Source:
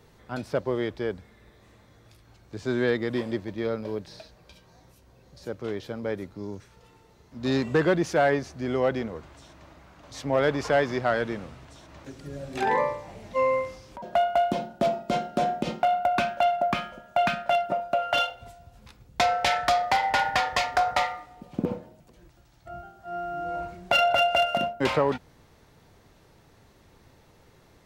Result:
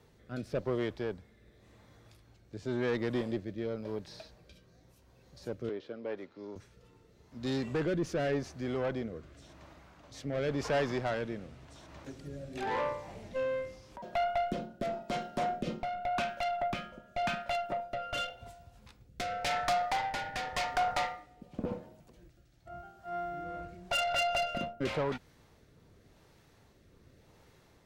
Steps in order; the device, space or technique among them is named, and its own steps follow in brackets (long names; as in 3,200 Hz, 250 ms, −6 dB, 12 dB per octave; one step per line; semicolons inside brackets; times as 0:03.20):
overdriven rotary cabinet (tube saturation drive 23 dB, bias 0.4; rotating-speaker cabinet horn 0.9 Hz)
0:05.69–0:06.56: three-way crossover with the lows and the highs turned down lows −18 dB, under 250 Hz, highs −22 dB, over 5,000 Hz
level −1.5 dB